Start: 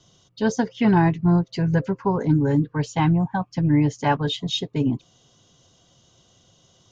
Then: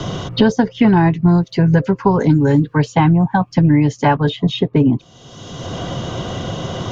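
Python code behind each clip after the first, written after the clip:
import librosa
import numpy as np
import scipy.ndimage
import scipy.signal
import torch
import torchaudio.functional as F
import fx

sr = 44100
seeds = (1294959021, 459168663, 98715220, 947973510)

y = fx.high_shelf(x, sr, hz=6300.0, db=-10.5)
y = fx.band_squash(y, sr, depth_pct=100)
y = y * 10.0 ** (7.0 / 20.0)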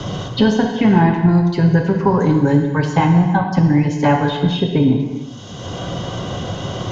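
y = fx.rev_gated(x, sr, seeds[0], gate_ms=490, shape='falling', drr_db=2.0)
y = y * 10.0 ** (-2.5 / 20.0)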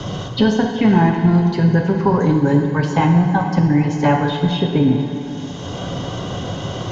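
y = fx.echo_diffused(x, sr, ms=478, feedback_pct=59, wet_db=-14.5)
y = y * 10.0 ** (-1.0 / 20.0)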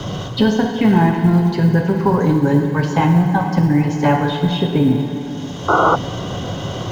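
y = fx.law_mismatch(x, sr, coded='mu')
y = fx.spec_paint(y, sr, seeds[1], shape='noise', start_s=5.68, length_s=0.28, low_hz=290.0, high_hz=1500.0, level_db=-13.0)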